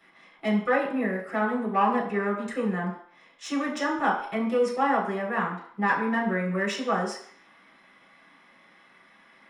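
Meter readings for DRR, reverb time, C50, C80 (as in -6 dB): -6.5 dB, 0.60 s, 6.5 dB, 9.5 dB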